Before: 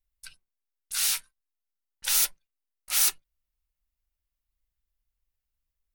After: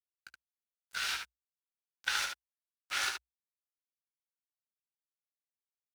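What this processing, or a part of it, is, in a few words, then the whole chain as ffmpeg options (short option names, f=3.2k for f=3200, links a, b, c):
pocket radio on a weak battery: -af "highpass=370,lowpass=3.4k,aeval=exprs='sgn(val(0))*max(abs(val(0))-0.00668,0)':c=same,equalizer=f=61:t=o:w=0.42:g=12,equalizer=f=1.5k:t=o:w=0.33:g=9.5,aecho=1:1:18|73:0.266|0.531"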